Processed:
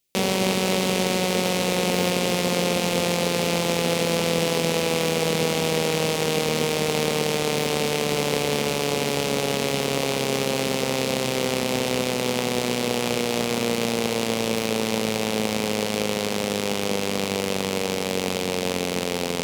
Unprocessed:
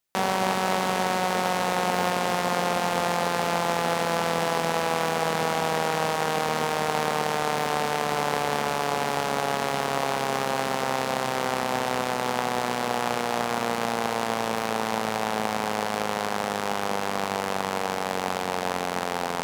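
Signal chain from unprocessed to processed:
flat-topped bell 1,100 Hz −12 dB
level +6.5 dB

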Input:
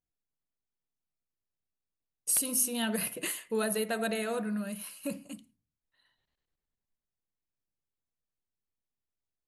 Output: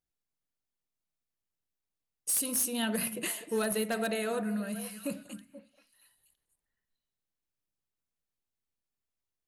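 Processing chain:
echo through a band-pass that steps 240 ms, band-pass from 240 Hz, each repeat 1.4 octaves, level −9.5 dB
wave folding −22.5 dBFS

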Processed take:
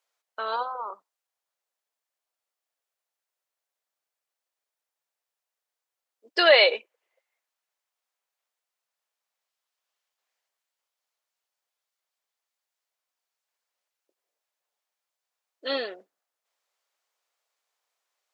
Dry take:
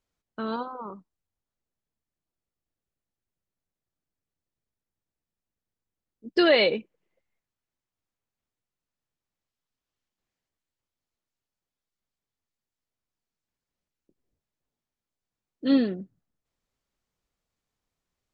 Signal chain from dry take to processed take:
high-pass filter 560 Hz 24 dB per octave
level +5.5 dB

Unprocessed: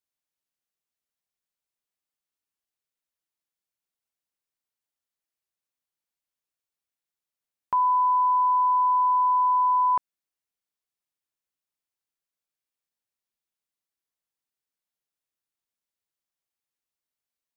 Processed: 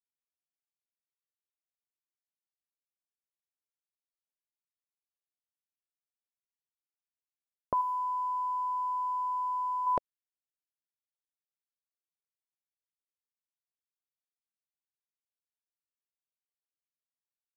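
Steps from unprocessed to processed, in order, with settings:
hold until the input has moved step −53 dBFS
0:07.81–0:09.87: parametric band 1,000 Hz −5 dB 0.23 octaves
low-pass that shuts in the quiet parts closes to 1,100 Hz, open at −22 dBFS
low shelf with overshoot 760 Hz +8 dB, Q 3

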